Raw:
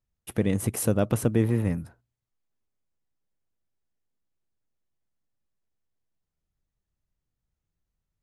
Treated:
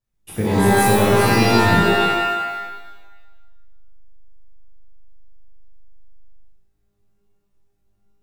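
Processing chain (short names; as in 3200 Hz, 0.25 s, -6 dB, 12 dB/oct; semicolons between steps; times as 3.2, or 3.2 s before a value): shimmer reverb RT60 1.2 s, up +12 st, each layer -2 dB, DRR -7.5 dB; gain -2 dB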